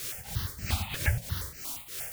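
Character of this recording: a quantiser's noise floor 6-bit, dither triangular; tremolo triangle 3.1 Hz, depth 85%; notches that jump at a steady rate 8.5 Hz 220–3500 Hz

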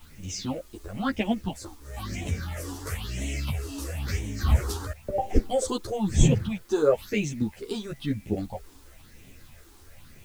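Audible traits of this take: phasing stages 6, 1 Hz, lowest notch 150–1300 Hz; a quantiser's noise floor 10-bit, dither triangular; a shimmering, thickened sound

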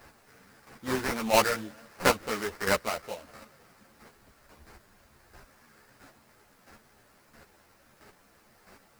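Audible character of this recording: aliases and images of a low sample rate 3400 Hz, jitter 20%; chopped level 1.5 Hz, depth 60%, duty 15%; a quantiser's noise floor 12-bit, dither triangular; a shimmering, thickened sound

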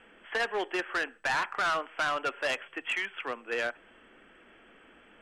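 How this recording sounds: noise floor -58 dBFS; spectral tilt -2.0 dB/oct

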